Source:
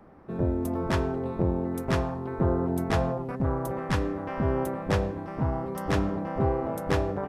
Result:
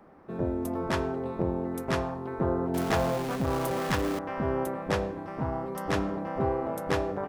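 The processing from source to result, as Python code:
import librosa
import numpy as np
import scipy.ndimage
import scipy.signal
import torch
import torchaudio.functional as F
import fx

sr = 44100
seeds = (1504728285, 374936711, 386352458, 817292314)

y = fx.zero_step(x, sr, step_db=-30.0, at=(2.74, 4.19))
y = fx.low_shelf(y, sr, hz=170.0, db=-8.0)
y = fx.hum_notches(y, sr, base_hz=50, count=2)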